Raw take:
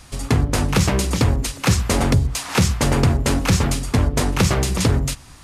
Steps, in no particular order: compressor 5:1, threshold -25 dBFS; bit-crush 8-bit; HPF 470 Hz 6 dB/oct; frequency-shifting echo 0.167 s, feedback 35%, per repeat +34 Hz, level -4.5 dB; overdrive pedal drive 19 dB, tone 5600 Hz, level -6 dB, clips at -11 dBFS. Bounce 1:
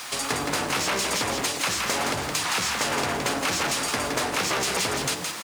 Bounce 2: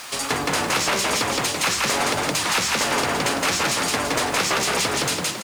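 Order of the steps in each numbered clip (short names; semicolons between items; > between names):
bit-crush > overdrive pedal > HPF > compressor > frequency-shifting echo; frequency-shifting echo > HPF > compressor > bit-crush > overdrive pedal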